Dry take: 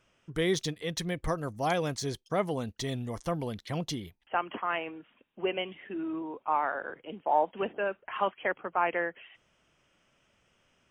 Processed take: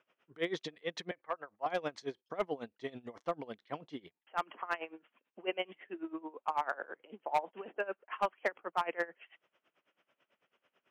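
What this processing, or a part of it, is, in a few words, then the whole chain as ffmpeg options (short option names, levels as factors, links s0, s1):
helicopter radio: -filter_complex "[0:a]highpass=330,lowpass=2800,aeval=exprs='val(0)*pow(10,-21*(0.5-0.5*cos(2*PI*9.1*n/s))/20)':c=same,asoftclip=type=hard:threshold=0.0668,asettb=1/sr,asplit=3[s0][s1][s2];[s0]atrim=end=1.114[s3];[s1]atrim=start=1.11:end=1.66,asetpts=PTS-STARTPTS,afade=t=in:d=0.004:c=qsin,afade=t=out:st=0.546:d=0.004:c=qsin,acrossover=split=590 2800:gain=0.178 1 0.0631[s4][s5][s6];[s4][s5][s6]amix=inputs=3:normalize=0[s7];[s2]atrim=start=1.656[s8];[s3][s7]acrossfade=d=0.004:c1=hsin:c2=qsin[s9];[s9][s8]acrossfade=d=0.004:c1=qsin:c2=hsin,volume=1.12"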